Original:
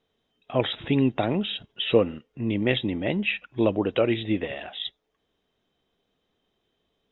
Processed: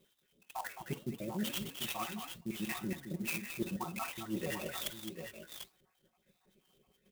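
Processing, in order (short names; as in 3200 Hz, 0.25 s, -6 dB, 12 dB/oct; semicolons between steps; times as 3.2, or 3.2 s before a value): random spectral dropouts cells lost 68%; HPF 94 Hz 6 dB/oct; low shelf 140 Hz +9.5 dB; comb 5.4 ms, depth 91%; reverse; compressor 6:1, threshold -41 dBFS, peak gain reduction 23.5 dB; reverse; flange 1.8 Hz, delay 5.5 ms, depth 10 ms, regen +86%; tapped delay 47/56/214/742/760 ms -18/-16/-8.5/-10/-11.5 dB; clock jitter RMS 0.047 ms; gain +8 dB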